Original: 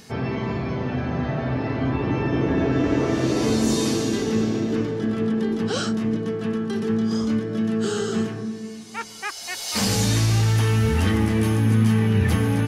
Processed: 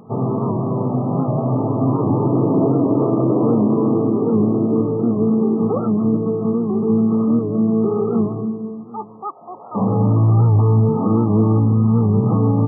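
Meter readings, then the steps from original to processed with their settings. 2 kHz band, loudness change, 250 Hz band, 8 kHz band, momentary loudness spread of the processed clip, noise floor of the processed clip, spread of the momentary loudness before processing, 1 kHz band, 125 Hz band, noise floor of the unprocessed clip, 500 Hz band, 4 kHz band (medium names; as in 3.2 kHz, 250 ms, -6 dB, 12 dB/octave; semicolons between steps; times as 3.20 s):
under -40 dB, +5.5 dB, +6.0 dB, under -40 dB, 7 LU, -37 dBFS, 8 LU, +5.5 dB, +5.0 dB, -36 dBFS, +6.0 dB, under -40 dB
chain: FFT band-pass 100–1300 Hz; loudness maximiser +13 dB; warped record 78 rpm, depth 100 cents; trim -6.5 dB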